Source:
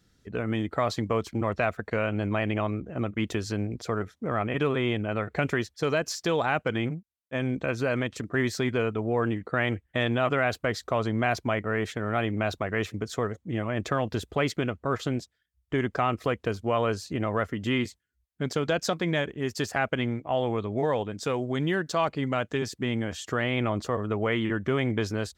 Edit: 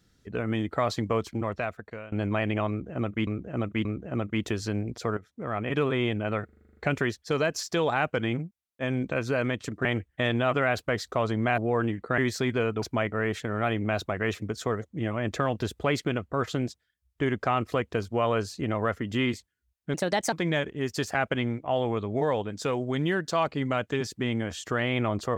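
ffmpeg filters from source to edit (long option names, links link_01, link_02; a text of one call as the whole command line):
ffmpeg -i in.wav -filter_complex "[0:a]asplit=19[link_01][link_02][link_03][link_04][link_05][link_06][link_07][link_08][link_09][link_10][link_11][link_12][link_13][link_14][link_15][link_16][link_17][link_18][link_19];[link_01]atrim=end=2.12,asetpts=PTS-STARTPTS,afade=type=out:start_time=1.18:duration=0.94:silence=0.112202[link_20];[link_02]atrim=start=2.12:end=3.272,asetpts=PTS-STARTPTS,afade=type=in:duration=0.004:curve=hsin:silence=0.112202[link_21];[link_03]atrim=start=2.688:end=3.272[link_22];[link_04]atrim=start=2.688:end=4.01,asetpts=PTS-STARTPTS,afade=type=out:start_time=1.318:duration=0.004:curve=hsin:silence=0.237137[link_23];[link_05]atrim=start=4.01:end=5.332,asetpts=PTS-STARTPTS,afade=type=in:duration=0.61:silence=0.237137[link_24];[link_06]atrim=start=5.288:end=5.332[link_25];[link_07]atrim=start=5.288:end=5.332[link_26];[link_08]atrim=start=5.288:end=5.332[link_27];[link_09]atrim=start=5.288:end=5.332[link_28];[link_10]atrim=start=5.288:end=5.332[link_29];[link_11]atrim=start=5.288:end=5.332[link_30];[link_12]atrim=start=5.288:end=5.332[link_31];[link_13]atrim=start=5.288:end=8.372[link_32];[link_14]atrim=start=9.608:end=11.342[link_33];[link_15]atrim=start=9.008:end=9.612[link_34];[link_16]atrim=start=8.368:end=9.012[link_35];[link_17]atrim=start=11.338:end=18.464[link_36];[link_18]atrim=start=18.46:end=18.94,asetpts=PTS-STARTPTS,asetrate=54684,aresample=44100[link_37];[link_19]atrim=start=18.936[link_38];[link_20][link_21]concat=n=2:v=0:a=1[link_39];[link_39][link_22]acrossfade=duration=0.004:curve1=hsin:curve2=hsin[link_40];[link_23][link_24]concat=n=2:v=0:a=1[link_41];[link_40][link_41]acrossfade=duration=0.004:curve1=hsin:curve2=hsin[link_42];[link_42][link_25]acrossfade=duration=0.004:curve1=hsin:curve2=hsin[link_43];[link_43][link_26]acrossfade=duration=0.004:curve1=hsin:curve2=hsin[link_44];[link_44][link_27]acrossfade=duration=0.004:curve1=hsin:curve2=hsin[link_45];[link_45][link_28]acrossfade=duration=0.004:curve1=hsin:curve2=hsin[link_46];[link_46][link_29]acrossfade=duration=0.004:curve1=hsin:curve2=hsin[link_47];[link_47][link_30]acrossfade=duration=0.004:curve1=hsin:curve2=hsin[link_48];[link_48][link_31]acrossfade=duration=0.004:curve1=hsin:curve2=hsin[link_49];[link_49][link_32]acrossfade=duration=0.004:curve1=hsin:curve2=hsin[link_50];[link_50][link_33]acrossfade=duration=0.004:curve1=hsin:curve2=hsin[link_51];[link_51][link_34]acrossfade=duration=0.004:curve1=hsin:curve2=hsin[link_52];[link_52][link_35]acrossfade=duration=0.004:curve1=hsin:curve2=hsin[link_53];[link_53][link_36]acrossfade=duration=0.004:curve1=hsin:curve2=hsin[link_54];[link_54][link_37]acrossfade=duration=0.004:curve1=hsin:curve2=hsin[link_55];[link_55][link_38]acrossfade=duration=0.004:curve1=hsin:curve2=hsin" out.wav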